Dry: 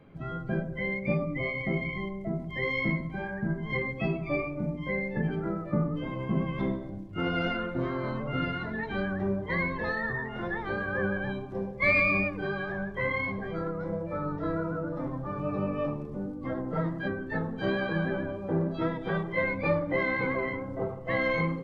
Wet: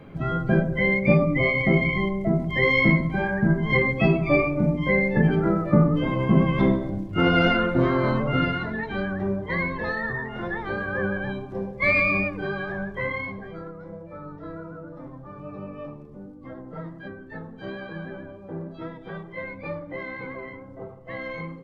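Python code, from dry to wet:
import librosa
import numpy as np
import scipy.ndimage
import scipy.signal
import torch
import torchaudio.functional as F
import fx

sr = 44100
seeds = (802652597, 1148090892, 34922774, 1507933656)

y = fx.gain(x, sr, db=fx.line((8.14, 10.0), (8.89, 3.0), (12.9, 3.0), (13.79, -6.5)))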